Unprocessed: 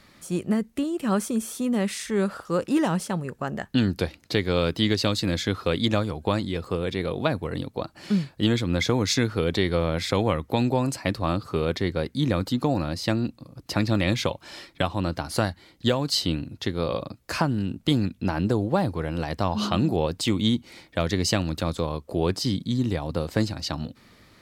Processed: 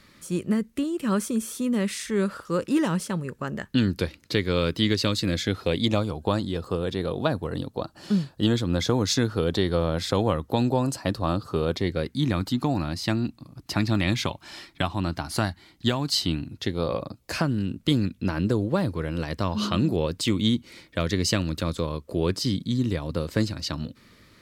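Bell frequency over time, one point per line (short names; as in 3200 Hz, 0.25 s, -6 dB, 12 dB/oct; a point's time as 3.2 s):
bell -10.5 dB 0.37 oct
5.17 s 740 Hz
6.24 s 2200 Hz
11.7 s 2200 Hz
12.16 s 510 Hz
16.49 s 510 Hz
16.97 s 3900 Hz
17.47 s 770 Hz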